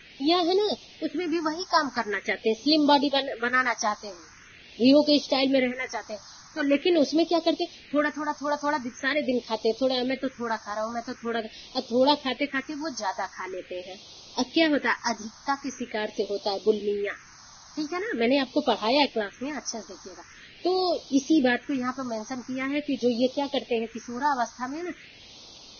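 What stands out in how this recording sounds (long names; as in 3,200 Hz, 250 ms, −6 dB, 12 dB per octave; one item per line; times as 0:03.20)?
a quantiser's noise floor 8 bits, dither triangular
phaser sweep stages 4, 0.44 Hz, lowest notch 440–1,800 Hz
Ogg Vorbis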